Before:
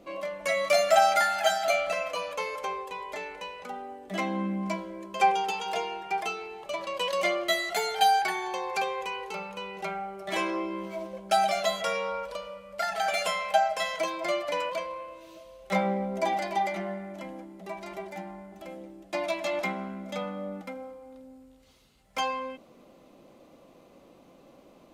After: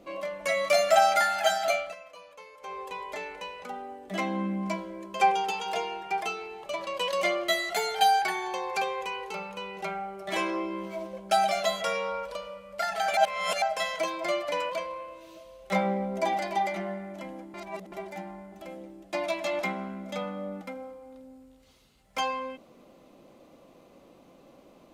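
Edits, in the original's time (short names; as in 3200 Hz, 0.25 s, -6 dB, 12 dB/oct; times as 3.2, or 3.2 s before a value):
1.68–2.87 dip -16 dB, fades 0.28 s
13.17–13.62 reverse
17.54–17.92 reverse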